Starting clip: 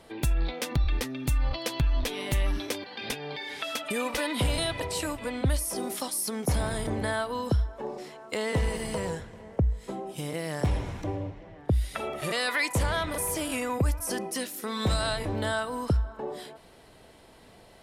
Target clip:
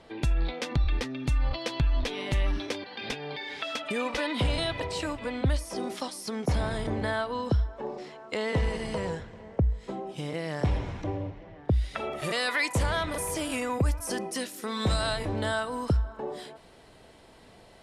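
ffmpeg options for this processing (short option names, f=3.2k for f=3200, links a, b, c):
-af "asetnsamples=n=441:p=0,asendcmd='12.12 lowpass f 9600',lowpass=5.5k"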